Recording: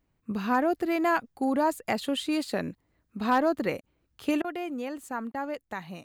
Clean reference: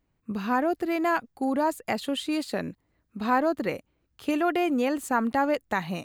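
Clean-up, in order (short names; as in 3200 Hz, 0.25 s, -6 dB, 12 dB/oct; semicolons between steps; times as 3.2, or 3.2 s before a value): clip repair -15.5 dBFS; interpolate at 3.81/4.42/5.32, 22 ms; gain correction +9 dB, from 4.43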